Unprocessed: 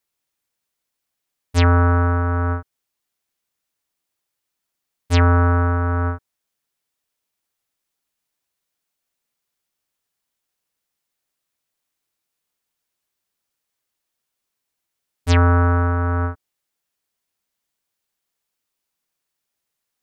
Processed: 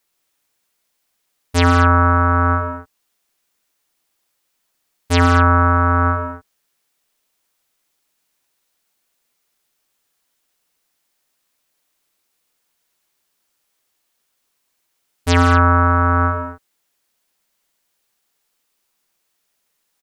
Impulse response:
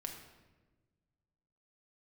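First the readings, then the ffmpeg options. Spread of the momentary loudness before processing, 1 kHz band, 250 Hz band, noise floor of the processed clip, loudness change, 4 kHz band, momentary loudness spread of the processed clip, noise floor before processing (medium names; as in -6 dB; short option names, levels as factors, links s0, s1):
11 LU, +8.5 dB, +4.0 dB, -71 dBFS, +3.0 dB, +5.5 dB, 14 LU, -80 dBFS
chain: -filter_complex "[0:a]asplit=2[s0][s1];[s1]alimiter=limit=0.158:level=0:latency=1,volume=1.33[s2];[s0][s2]amix=inputs=2:normalize=0,equalizer=f=88:w=0.83:g=-6.5,aecho=1:1:68|111|155|181|230:0.224|0.316|0.266|0.266|0.224,volume=1.12"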